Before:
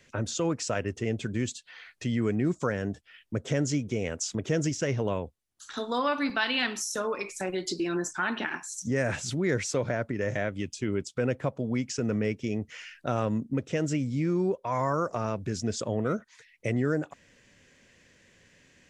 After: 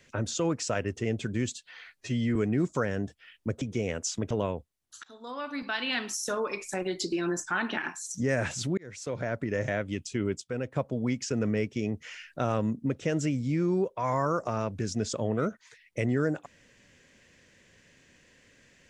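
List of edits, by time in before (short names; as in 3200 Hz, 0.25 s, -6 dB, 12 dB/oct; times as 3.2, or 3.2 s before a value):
1.95–2.22 stretch 1.5×
3.48–3.78 cut
4.47–4.98 cut
5.71–6.95 fade in, from -24 dB
9.45–10.1 fade in linear
11.09–11.43 gain -5.5 dB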